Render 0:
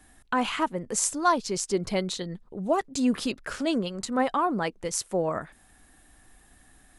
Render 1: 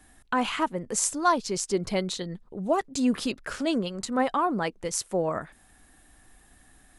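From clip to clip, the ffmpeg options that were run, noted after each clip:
-af anull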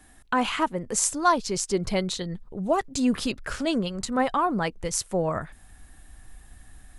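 -af "asubboost=boost=3:cutoff=150,volume=2dB"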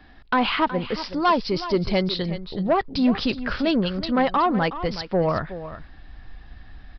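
-af "aresample=11025,asoftclip=type=tanh:threshold=-18dB,aresample=44100,aecho=1:1:370:0.224,volume=5.5dB"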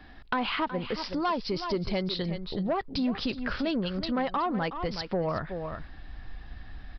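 -af "acompressor=threshold=-30dB:ratio=2.5"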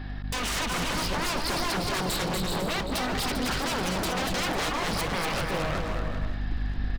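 -af "aeval=exprs='val(0)+0.00794*(sin(2*PI*50*n/s)+sin(2*PI*2*50*n/s)/2+sin(2*PI*3*50*n/s)/3+sin(2*PI*4*50*n/s)/4+sin(2*PI*5*50*n/s)/5)':c=same,aeval=exprs='0.0224*(abs(mod(val(0)/0.0224+3,4)-2)-1)':c=same,aecho=1:1:240|396|497.4|563.3|606.2:0.631|0.398|0.251|0.158|0.1,volume=7.5dB"

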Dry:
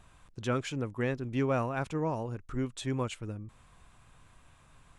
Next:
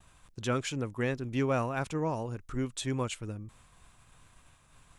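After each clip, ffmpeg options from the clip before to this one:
-af "agate=range=-33dB:threshold=-55dB:ratio=3:detection=peak,highshelf=f=3.8k:g=7"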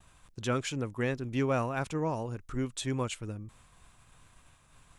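-af anull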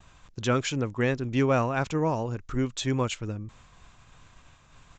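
-af "aresample=16000,aresample=44100,volume=5.5dB"

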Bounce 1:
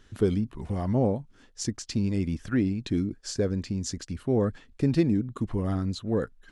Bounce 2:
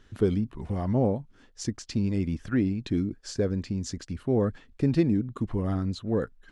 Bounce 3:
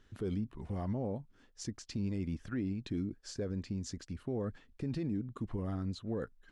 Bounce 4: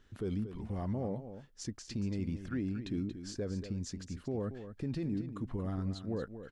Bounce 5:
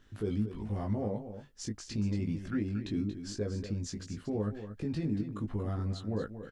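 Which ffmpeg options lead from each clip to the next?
-af "highshelf=f=5.5k:g=-7"
-af "alimiter=limit=-20.5dB:level=0:latency=1:release=41,volume=-7.5dB"
-af "aecho=1:1:232:0.299"
-filter_complex "[0:a]asplit=2[a][b];[b]adelay=19,volume=-3dB[c];[a][c]amix=inputs=2:normalize=0,volume=1dB"

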